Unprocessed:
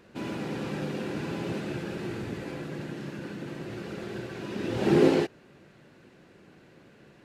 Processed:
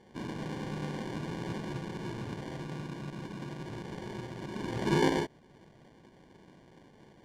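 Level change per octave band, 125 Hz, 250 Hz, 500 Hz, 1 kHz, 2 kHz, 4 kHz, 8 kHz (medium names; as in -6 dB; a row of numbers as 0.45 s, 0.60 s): -2.0 dB, -6.0 dB, -7.5 dB, 0.0 dB, -2.5 dB, -2.0 dB, -1.0 dB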